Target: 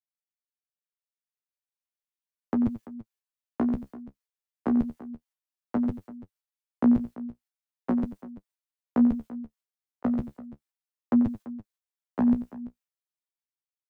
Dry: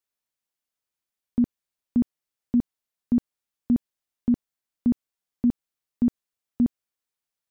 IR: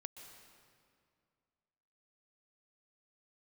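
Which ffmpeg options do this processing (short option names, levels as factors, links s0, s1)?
-filter_complex "[0:a]agate=range=0.0631:threshold=0.0224:ratio=16:detection=peak,equalizer=f=300:w=0.94:g=-5.5,acrossover=split=110|360[s0][s1][s2];[s2]acontrast=65[s3];[s0][s1][s3]amix=inputs=3:normalize=0,alimiter=level_in=1.06:limit=0.0631:level=0:latency=1:release=10,volume=0.944,dynaudnorm=f=510:g=3:m=3.76,atempo=0.54,flanger=delay=8.5:depth=8.7:regen=30:speed=0.36:shape=triangular,asplit=2[s4][s5];[s5]aecho=0:1:90|338:0.224|0.141[s6];[s4][s6]amix=inputs=2:normalize=0"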